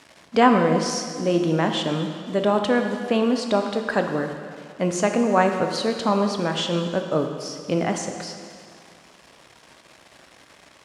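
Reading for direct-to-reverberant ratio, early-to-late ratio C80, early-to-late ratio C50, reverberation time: 4.5 dB, 7.0 dB, 6.0 dB, 2.2 s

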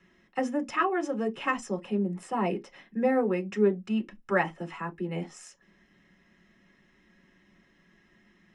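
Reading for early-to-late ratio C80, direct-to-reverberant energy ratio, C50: 38.5 dB, 2.0 dB, 26.5 dB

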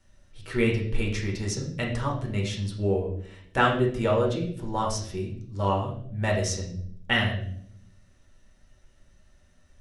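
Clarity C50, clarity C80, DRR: 6.5 dB, 9.5 dB, −2.5 dB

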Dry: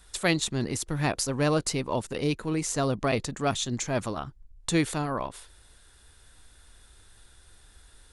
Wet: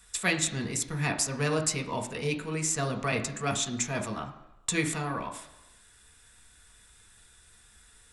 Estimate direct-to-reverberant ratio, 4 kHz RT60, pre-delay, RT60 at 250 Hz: 2.5 dB, 0.95 s, 3 ms, 0.85 s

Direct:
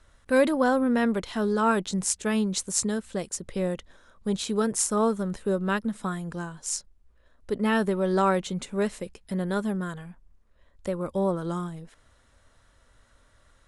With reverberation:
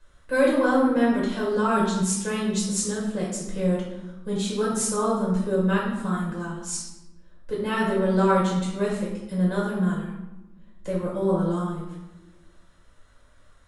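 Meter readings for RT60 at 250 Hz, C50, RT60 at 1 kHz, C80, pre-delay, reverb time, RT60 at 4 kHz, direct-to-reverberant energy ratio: 1.7 s, 1.5 dB, 1.0 s, 4.5 dB, 5 ms, 1.1 s, 0.70 s, −6.0 dB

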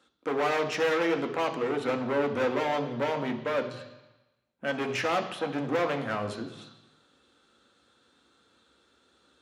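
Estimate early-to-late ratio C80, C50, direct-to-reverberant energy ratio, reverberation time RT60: 12.5 dB, 10.5 dB, 5.0 dB, 1.1 s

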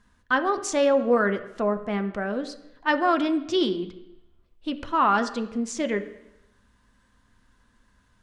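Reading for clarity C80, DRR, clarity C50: 14.5 dB, 8.0 dB, 12.5 dB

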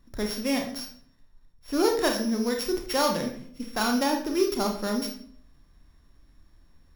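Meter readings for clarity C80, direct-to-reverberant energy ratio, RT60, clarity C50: 11.0 dB, 2.0 dB, 0.55 s, 7.0 dB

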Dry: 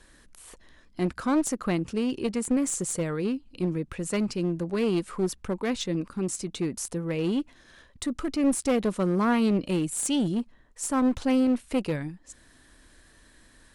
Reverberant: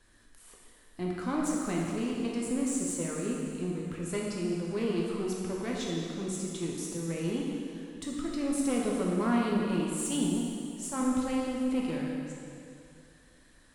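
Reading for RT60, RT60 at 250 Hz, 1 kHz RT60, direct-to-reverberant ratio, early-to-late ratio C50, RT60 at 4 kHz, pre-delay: 2.5 s, 2.4 s, 2.5 s, −3.0 dB, −0.5 dB, 2.3 s, 5 ms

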